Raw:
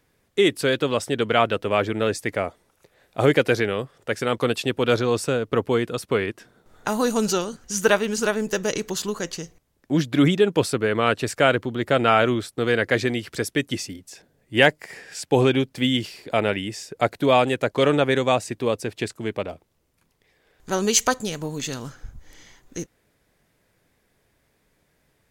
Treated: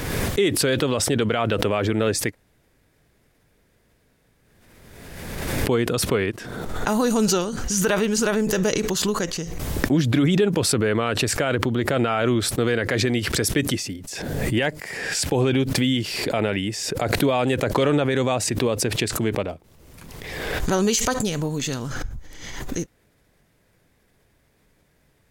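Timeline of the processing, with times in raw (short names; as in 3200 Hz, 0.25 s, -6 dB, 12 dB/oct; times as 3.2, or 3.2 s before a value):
2.32–5.66 room tone, crossfade 0.06 s
whole clip: low shelf 230 Hz +4.5 dB; limiter -12.5 dBFS; backwards sustainer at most 33 dB/s; gain +1.5 dB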